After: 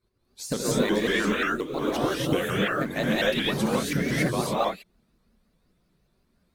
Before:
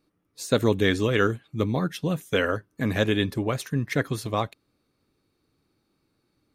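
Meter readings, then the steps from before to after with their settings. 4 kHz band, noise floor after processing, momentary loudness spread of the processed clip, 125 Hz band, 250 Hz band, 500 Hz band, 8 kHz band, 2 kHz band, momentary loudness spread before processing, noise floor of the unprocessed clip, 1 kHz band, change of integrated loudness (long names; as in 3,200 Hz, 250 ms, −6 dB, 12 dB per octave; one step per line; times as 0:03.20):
+2.5 dB, −70 dBFS, 5 LU, −4.0 dB, +0.5 dB, −0.5 dB, +5.5 dB, +1.5 dB, 7 LU, −74 dBFS, +2.5 dB, 0.0 dB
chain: harmonic-percussive split with one part muted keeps percussive
low-shelf EQ 150 Hz +9.5 dB
downward compressor 6 to 1, threshold −25 dBFS, peak gain reduction 10 dB
floating-point word with a short mantissa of 4 bits
reverb whose tail is shaped and stops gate 310 ms rising, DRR −7.5 dB
pitch modulation by a square or saw wave saw up 5.6 Hz, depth 160 cents
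level −1.5 dB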